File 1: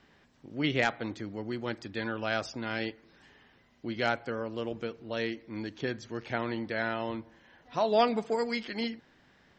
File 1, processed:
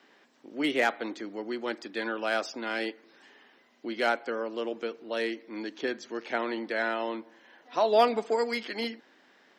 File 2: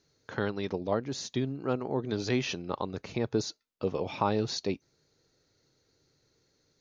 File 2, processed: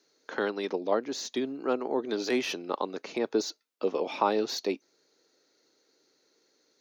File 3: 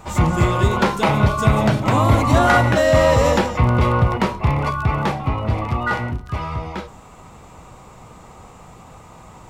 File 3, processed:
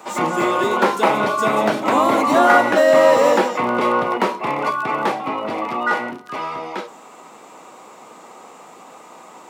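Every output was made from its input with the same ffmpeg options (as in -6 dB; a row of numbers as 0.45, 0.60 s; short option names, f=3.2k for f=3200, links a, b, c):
-filter_complex "[0:a]highpass=f=260:w=0.5412,highpass=f=260:w=1.3066,acrossover=split=680|2000[a][b][c];[c]asoftclip=type=tanh:threshold=-31.5dB[d];[a][b][d]amix=inputs=3:normalize=0,volume=3dB"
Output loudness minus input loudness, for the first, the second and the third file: +2.0, +1.5, +0.5 LU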